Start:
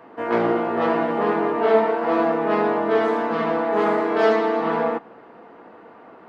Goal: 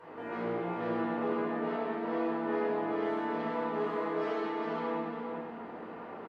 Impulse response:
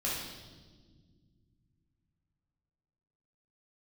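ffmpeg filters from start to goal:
-filter_complex "[0:a]acompressor=threshold=0.00891:ratio=2.5,aecho=1:1:404:0.531[s0];[1:a]atrim=start_sample=2205,afade=t=out:st=0.32:d=0.01,atrim=end_sample=14553,asetrate=32634,aresample=44100[s1];[s0][s1]afir=irnorm=-1:irlink=0,volume=0.447"

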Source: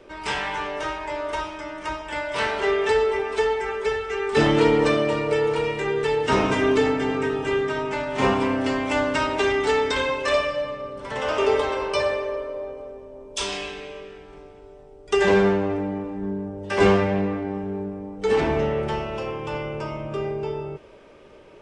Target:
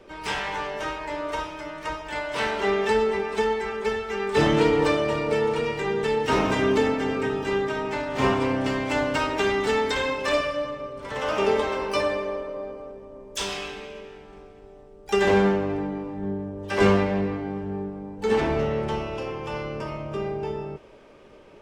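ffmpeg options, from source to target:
-filter_complex "[0:a]asplit=3[s0][s1][s2];[s1]asetrate=22050,aresample=44100,atempo=2,volume=0.251[s3];[s2]asetrate=88200,aresample=44100,atempo=0.5,volume=0.158[s4];[s0][s3][s4]amix=inputs=3:normalize=0,volume=0.794"

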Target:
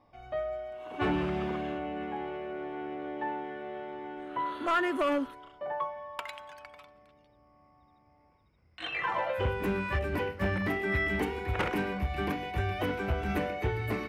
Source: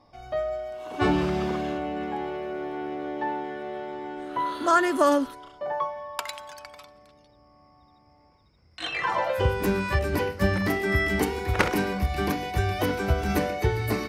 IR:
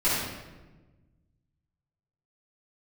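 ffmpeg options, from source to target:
-af "asoftclip=type=hard:threshold=0.126,highshelf=f=3700:t=q:w=1.5:g=-8,volume=0.531"

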